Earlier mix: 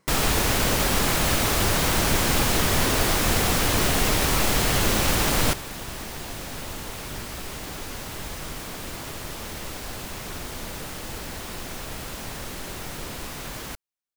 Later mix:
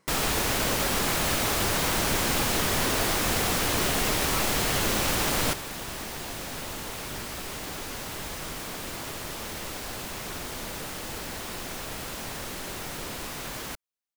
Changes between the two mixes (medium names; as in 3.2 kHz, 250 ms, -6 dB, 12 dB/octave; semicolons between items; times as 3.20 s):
first sound -3.0 dB; master: add bass shelf 140 Hz -6 dB